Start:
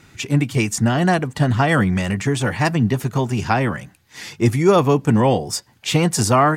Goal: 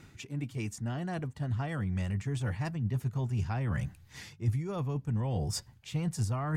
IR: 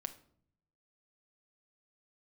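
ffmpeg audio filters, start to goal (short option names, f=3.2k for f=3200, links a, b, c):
-af "lowshelf=f=420:g=6,areverse,acompressor=threshold=-25dB:ratio=10,areverse,asubboost=boost=5.5:cutoff=120,volume=-7.5dB"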